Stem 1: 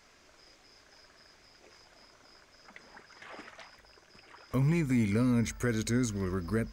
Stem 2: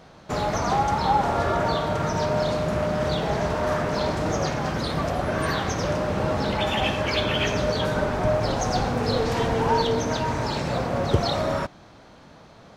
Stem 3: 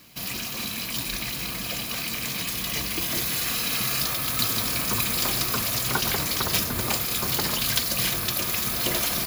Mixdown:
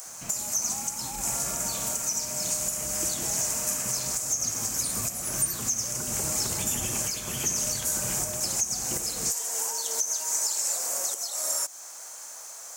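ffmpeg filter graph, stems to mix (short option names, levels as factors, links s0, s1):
-filter_complex "[0:a]adelay=750,volume=0.133[s0];[1:a]highpass=640,aemphasis=mode=production:type=riaa,acompressor=threshold=0.0316:ratio=5,volume=1.12[s1];[2:a]lowpass=f=3000:w=0.5412,lowpass=f=3000:w=1.3066,adelay=50,volume=0.668[s2];[s0][s1][s2]amix=inputs=3:normalize=0,highshelf=f=5200:t=q:w=3:g=12,acrossover=split=460|3000[s3][s4][s5];[s4]acompressor=threshold=0.00891:ratio=4[s6];[s3][s6][s5]amix=inputs=3:normalize=0,alimiter=limit=0.158:level=0:latency=1:release=406"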